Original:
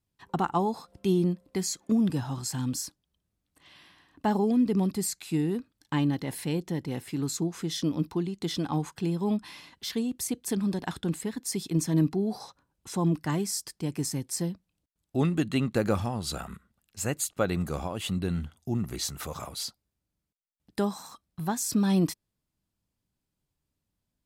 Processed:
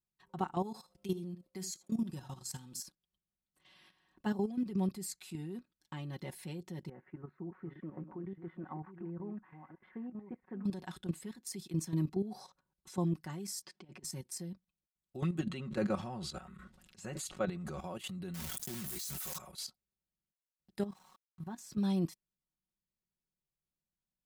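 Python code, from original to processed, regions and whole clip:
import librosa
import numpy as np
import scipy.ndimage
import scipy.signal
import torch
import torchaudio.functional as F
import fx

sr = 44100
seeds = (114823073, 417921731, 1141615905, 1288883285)

y = fx.chain(x, sr, fx.high_shelf(hz=3300.0, db=6.5),
    fx.level_steps(step_db=11),
    fx.echo_single(ms=74, db=-14.5), at=(0.63, 2.8))
y = fx.chain(y, sr, fx.reverse_delay(ms=572, wet_db=-8),
    fx.steep_lowpass(hz=1900.0, slope=36),
    fx.low_shelf(hz=170.0, db=-9.0), at=(6.89, 10.65))
y = fx.chain(y, sr, fx.over_compress(threshold_db=-36.0, ratio=-0.5),
    fx.bandpass_edges(low_hz=170.0, high_hz=3600.0), at=(13.62, 14.04))
y = fx.chain(y, sr, fx.air_absorb(metres=55.0),
    fx.sustainer(db_per_s=40.0), at=(15.39, 17.8))
y = fx.chain(y, sr, fx.block_float(bits=3),
    fx.pre_emphasis(coefficient=0.8),
    fx.env_flatten(amount_pct=100), at=(18.34, 19.38))
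y = fx.chain(y, sr, fx.lowpass(hz=2100.0, slope=6),
    fx.level_steps(step_db=11),
    fx.sample_gate(floor_db=-54.5), at=(20.84, 21.78))
y = y + 0.74 * np.pad(y, (int(5.4 * sr / 1000.0), 0))[:len(y)]
y = fx.level_steps(y, sr, step_db=11)
y = y * librosa.db_to_amplitude(-8.5)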